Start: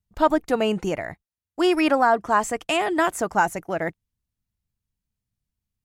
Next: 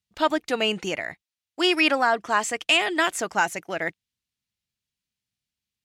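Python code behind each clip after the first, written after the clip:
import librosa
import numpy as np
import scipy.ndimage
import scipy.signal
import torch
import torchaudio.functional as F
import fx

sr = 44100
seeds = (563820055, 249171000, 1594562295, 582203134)

y = fx.weighting(x, sr, curve='D')
y = y * 10.0 ** (-3.5 / 20.0)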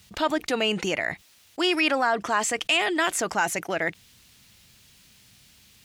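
y = fx.env_flatten(x, sr, amount_pct=50)
y = y * 10.0 ** (-3.5 / 20.0)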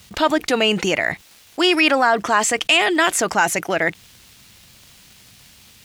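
y = fx.dmg_crackle(x, sr, seeds[0], per_s=230.0, level_db=-44.0)
y = y * 10.0 ** (7.0 / 20.0)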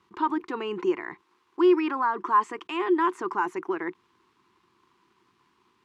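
y = fx.double_bandpass(x, sr, hz=610.0, octaves=1.5)
y = y * 10.0 ** (1.0 / 20.0)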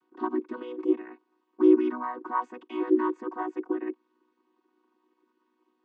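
y = fx.chord_vocoder(x, sr, chord='major triad', root=59)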